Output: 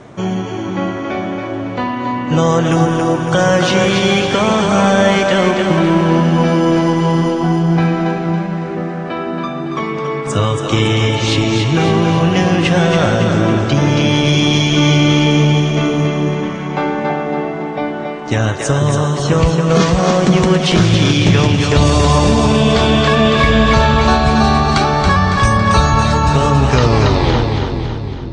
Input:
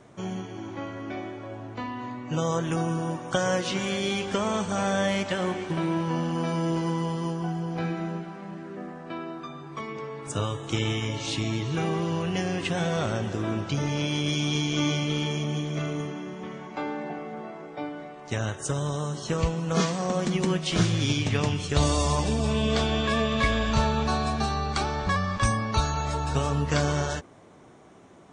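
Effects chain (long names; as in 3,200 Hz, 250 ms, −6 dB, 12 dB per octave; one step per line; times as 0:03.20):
turntable brake at the end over 1.81 s
in parallel at −8 dB: soft clipping −27 dBFS, distortion −9 dB
on the sum: high-frequency loss of the air 63 metres
echo with a time of its own for lows and highs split 350 Hz, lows 496 ms, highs 278 ms, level −5 dB
boost into a limiter +13 dB
level −1 dB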